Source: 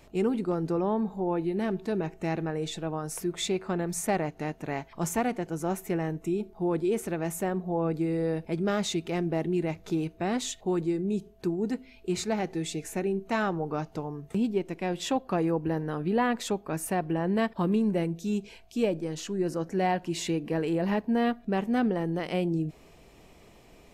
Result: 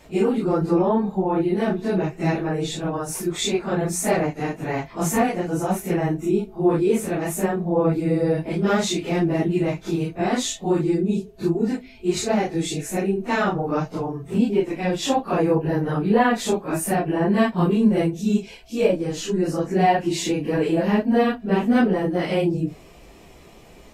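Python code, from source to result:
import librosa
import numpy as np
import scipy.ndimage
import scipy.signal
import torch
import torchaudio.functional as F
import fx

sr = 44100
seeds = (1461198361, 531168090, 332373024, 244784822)

y = fx.phase_scramble(x, sr, seeds[0], window_ms=100)
y = F.gain(torch.from_numpy(y), 7.5).numpy()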